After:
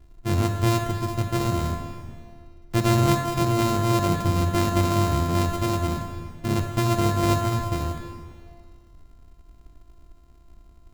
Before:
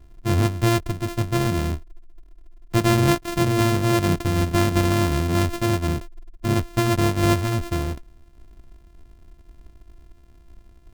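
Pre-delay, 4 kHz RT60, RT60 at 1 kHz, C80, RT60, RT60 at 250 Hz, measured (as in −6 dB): 30 ms, 1.6 s, 2.0 s, 7.0 dB, 2.1 s, 2.1 s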